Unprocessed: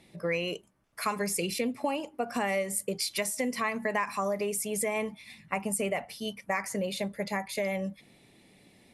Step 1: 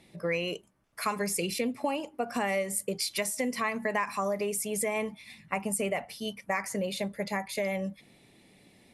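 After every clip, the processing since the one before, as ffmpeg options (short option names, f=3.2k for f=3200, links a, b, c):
-af anull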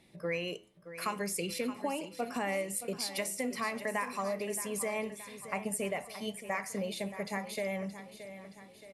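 -af "flanger=delay=8.5:depth=2.3:regen=-86:speed=0.91:shape=sinusoidal,aecho=1:1:623|1246|1869|2492|3115:0.237|0.126|0.0666|0.0353|0.0187"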